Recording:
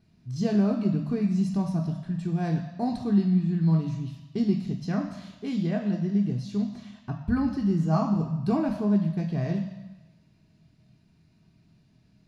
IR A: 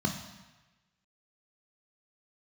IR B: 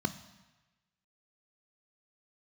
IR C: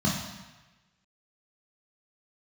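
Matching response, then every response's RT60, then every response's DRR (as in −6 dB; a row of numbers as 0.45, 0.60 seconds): A; 1.1, 1.1, 1.1 seconds; 3.5, 11.0, −4.0 decibels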